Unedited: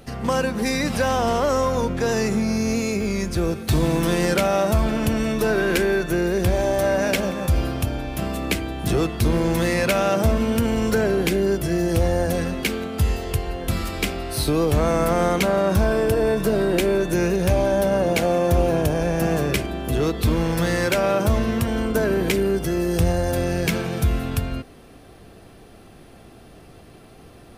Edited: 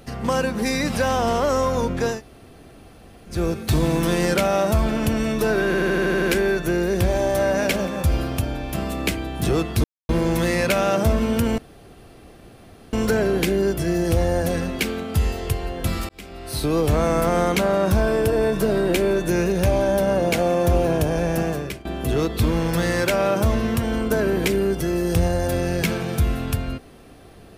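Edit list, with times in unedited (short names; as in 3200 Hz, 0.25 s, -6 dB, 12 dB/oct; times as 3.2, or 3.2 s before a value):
2.14–3.33 room tone, crossfade 0.16 s
5.66 stutter 0.08 s, 8 plays
9.28 insert silence 0.25 s
10.77 insert room tone 1.35 s
13.93–14.62 fade in linear
19.16–19.69 fade out, to -18 dB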